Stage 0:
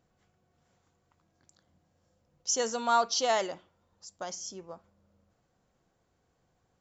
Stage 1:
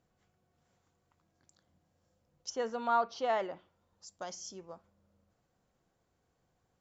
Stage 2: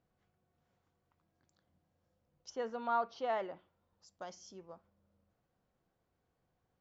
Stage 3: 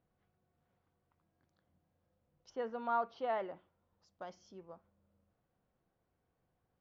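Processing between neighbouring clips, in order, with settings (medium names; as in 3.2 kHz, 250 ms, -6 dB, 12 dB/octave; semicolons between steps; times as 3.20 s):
low-pass that closes with the level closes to 2.1 kHz, closed at -28.5 dBFS; trim -3.5 dB
distance through air 120 m; trim -3.5 dB
distance through air 190 m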